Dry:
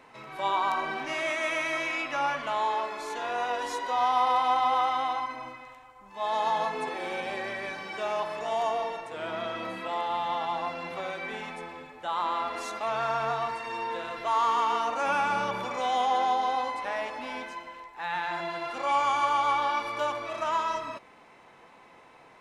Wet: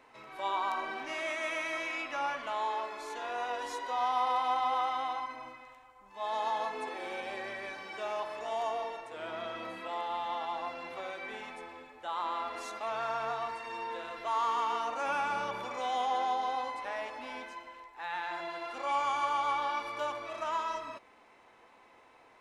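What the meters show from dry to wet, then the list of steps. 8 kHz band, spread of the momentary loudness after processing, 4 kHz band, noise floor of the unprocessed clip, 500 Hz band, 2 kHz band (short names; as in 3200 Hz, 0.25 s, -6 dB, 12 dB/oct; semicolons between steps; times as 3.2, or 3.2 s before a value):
-5.5 dB, 11 LU, -5.5 dB, -54 dBFS, -5.5 dB, -5.5 dB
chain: bell 160 Hz -12 dB 0.46 oct; gain -5.5 dB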